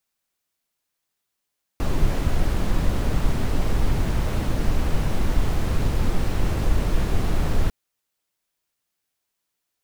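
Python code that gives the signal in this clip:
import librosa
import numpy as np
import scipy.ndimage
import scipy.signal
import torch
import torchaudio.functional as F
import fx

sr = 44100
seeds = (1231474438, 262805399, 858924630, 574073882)

y = fx.noise_colour(sr, seeds[0], length_s=5.9, colour='brown', level_db=-19.0)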